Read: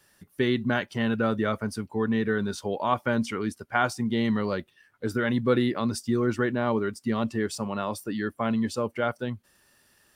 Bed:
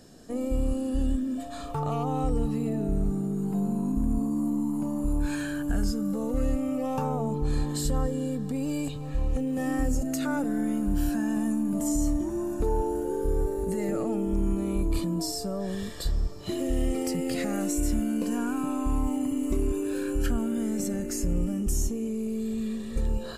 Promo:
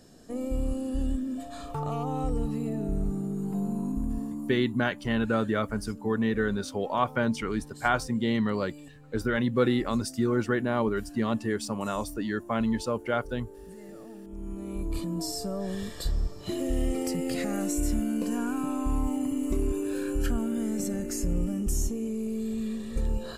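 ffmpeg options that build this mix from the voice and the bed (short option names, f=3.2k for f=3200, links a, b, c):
-filter_complex "[0:a]adelay=4100,volume=-1dB[a];[1:a]volume=13dB,afade=t=out:st=3.83:d=0.98:silence=0.199526,afade=t=in:st=14.28:d=1.14:silence=0.16788[b];[a][b]amix=inputs=2:normalize=0"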